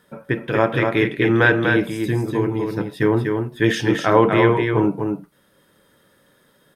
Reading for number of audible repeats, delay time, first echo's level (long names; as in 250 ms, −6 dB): 1, 244 ms, −4.5 dB